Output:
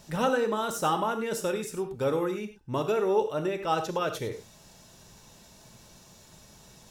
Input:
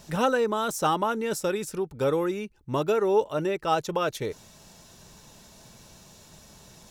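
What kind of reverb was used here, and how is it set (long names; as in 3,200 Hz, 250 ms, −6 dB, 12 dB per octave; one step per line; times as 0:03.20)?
reverb whose tail is shaped and stops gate 130 ms flat, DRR 6.5 dB
level −3 dB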